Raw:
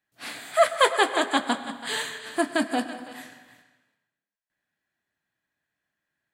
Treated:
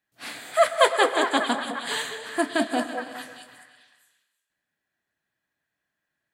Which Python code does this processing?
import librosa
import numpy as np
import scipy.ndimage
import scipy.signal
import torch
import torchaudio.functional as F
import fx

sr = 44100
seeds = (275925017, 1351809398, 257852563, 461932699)

y = fx.echo_stepped(x, sr, ms=208, hz=520.0, octaves=1.4, feedback_pct=70, wet_db=-3.0)